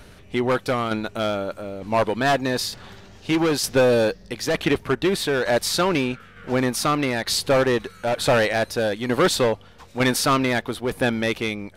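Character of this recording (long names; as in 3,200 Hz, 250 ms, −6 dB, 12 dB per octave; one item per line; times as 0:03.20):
tremolo saw down 1.1 Hz, depth 50%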